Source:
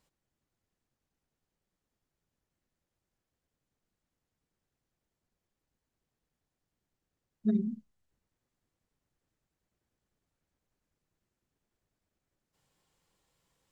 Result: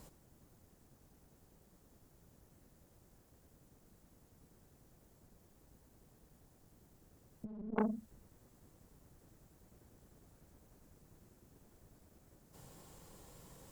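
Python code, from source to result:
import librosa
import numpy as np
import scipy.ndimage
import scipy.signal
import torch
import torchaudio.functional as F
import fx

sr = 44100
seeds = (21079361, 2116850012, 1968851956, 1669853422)

y = fx.dynamic_eq(x, sr, hz=140.0, q=0.72, threshold_db=-37.0, ratio=4.0, max_db=3)
y = fx.echo_feedback(y, sr, ms=84, feedback_pct=36, wet_db=-16)
y = fx.clip_asym(y, sr, top_db=-36.5, bottom_db=-24.0)
y = fx.over_compress(y, sr, threshold_db=-43.0, ratio=-0.5)
y = fx.peak_eq(y, sr, hz=2800.0, db=-11.5, octaves=2.7)
y = fx.transformer_sat(y, sr, knee_hz=890.0)
y = y * 10.0 ** (12.5 / 20.0)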